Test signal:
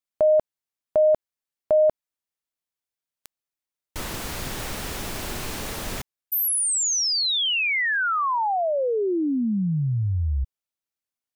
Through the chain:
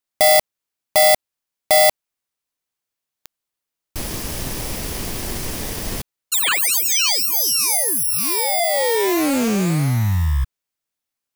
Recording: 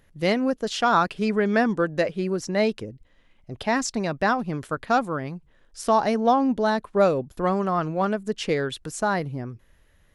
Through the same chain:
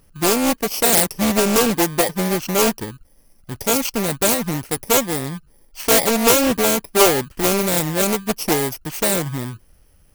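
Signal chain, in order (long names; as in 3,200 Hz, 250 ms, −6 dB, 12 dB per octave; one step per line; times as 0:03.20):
samples in bit-reversed order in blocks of 32 samples
highs frequency-modulated by the lows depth 0.69 ms
level +6 dB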